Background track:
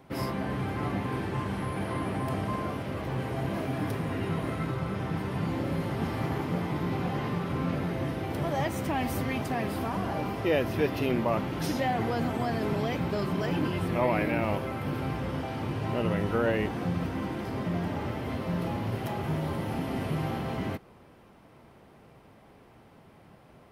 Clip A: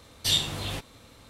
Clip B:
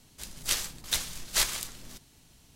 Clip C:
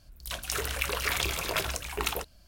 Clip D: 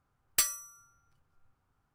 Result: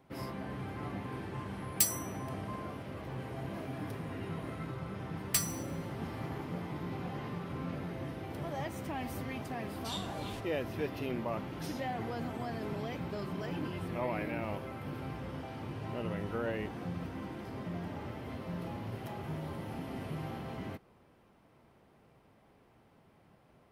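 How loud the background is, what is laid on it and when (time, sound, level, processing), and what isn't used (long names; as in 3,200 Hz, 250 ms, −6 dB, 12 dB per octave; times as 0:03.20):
background track −9 dB
0:01.42: mix in D −10.5 dB + spectral tilt +3 dB per octave
0:04.96: mix in D −3.5 dB + four-comb reverb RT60 1.1 s, combs from 33 ms, DRR 16 dB
0:09.60: mix in A −16.5 dB + speech leveller
not used: B, C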